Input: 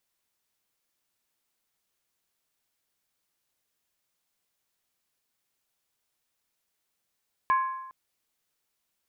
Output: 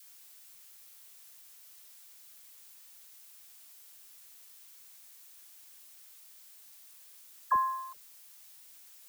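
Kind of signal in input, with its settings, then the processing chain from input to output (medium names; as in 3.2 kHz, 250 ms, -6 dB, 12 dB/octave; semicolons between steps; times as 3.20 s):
skin hit length 0.41 s, lowest mode 1.05 kHz, decay 0.99 s, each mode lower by 10 dB, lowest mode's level -18.5 dB
elliptic low-pass 1.5 kHz; added noise blue -55 dBFS; phase dispersion lows, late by 62 ms, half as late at 650 Hz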